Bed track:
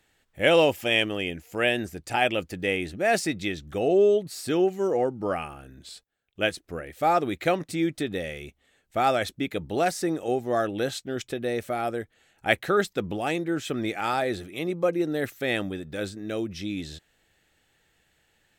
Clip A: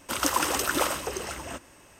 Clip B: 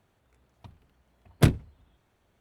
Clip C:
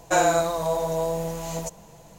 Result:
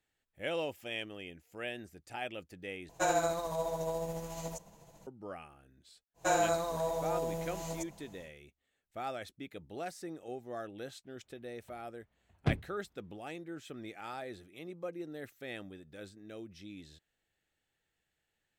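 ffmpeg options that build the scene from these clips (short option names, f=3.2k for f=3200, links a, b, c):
-filter_complex "[3:a]asplit=2[a][b];[0:a]volume=-16.5dB[c];[a]tremolo=f=14:d=0.34[d];[2:a]lowpass=3.9k[e];[c]asplit=2[f][g];[f]atrim=end=2.894[h];[d]atrim=end=2.18,asetpts=PTS-STARTPTS,volume=-8.5dB[i];[g]atrim=start=5.066[j];[b]atrim=end=2.18,asetpts=PTS-STARTPTS,volume=-9dB,afade=t=in:d=0.1,afade=t=out:st=2.08:d=0.1,adelay=6140[k];[e]atrim=end=2.4,asetpts=PTS-STARTPTS,volume=-11dB,afade=t=in:d=0.004:c=hsin,afade=t=out:st=2.396:d=0.004:c=hsin,adelay=11040[l];[h][i]acrossfade=d=0.004:c1=hsin:c2=hsin[m];[m][j]acrossfade=d=0.004:c1=hsin:c2=hsin[n];[n][k][l]amix=inputs=3:normalize=0"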